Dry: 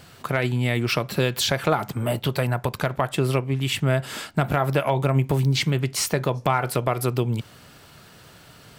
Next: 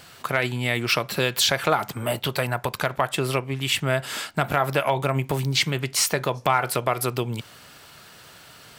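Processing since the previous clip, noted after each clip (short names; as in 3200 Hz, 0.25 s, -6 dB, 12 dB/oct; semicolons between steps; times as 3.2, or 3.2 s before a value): low shelf 470 Hz -9.5 dB; gain +3.5 dB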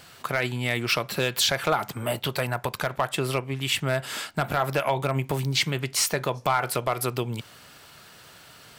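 hard clip -11.5 dBFS, distortion -20 dB; gain -2 dB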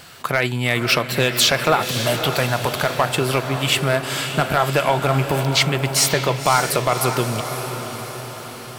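diffused feedback echo 0.559 s, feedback 57%, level -8 dB; gain +6.5 dB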